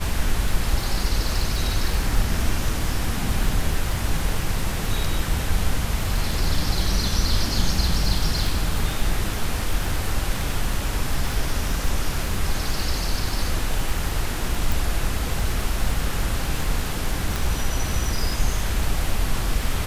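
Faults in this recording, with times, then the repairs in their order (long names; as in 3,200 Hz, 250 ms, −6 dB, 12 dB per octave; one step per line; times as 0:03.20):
surface crackle 31 per second −24 dBFS
0:14.72: click
0:17.36: click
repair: click removal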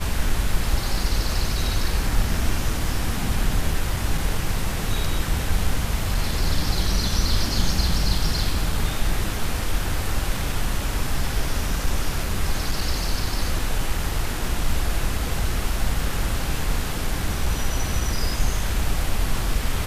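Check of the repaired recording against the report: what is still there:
0:14.72: click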